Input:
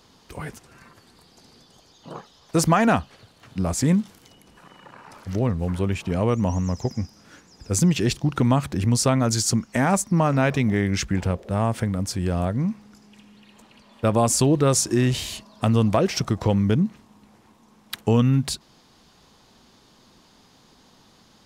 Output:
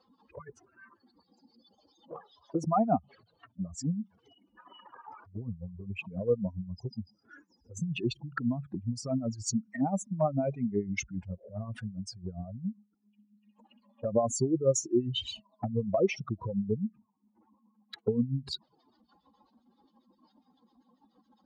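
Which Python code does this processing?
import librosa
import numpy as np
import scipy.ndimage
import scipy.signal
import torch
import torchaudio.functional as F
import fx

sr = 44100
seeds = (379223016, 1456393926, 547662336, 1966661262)

y = fx.spec_expand(x, sr, power=2.9)
y = fx.filter_lfo_bandpass(y, sr, shape='sine', hz=7.4, low_hz=660.0, high_hz=2400.0, q=0.8)
y = fx.env_flanger(y, sr, rest_ms=3.9, full_db=-29.0)
y = F.gain(torch.from_numpy(y), 2.0).numpy()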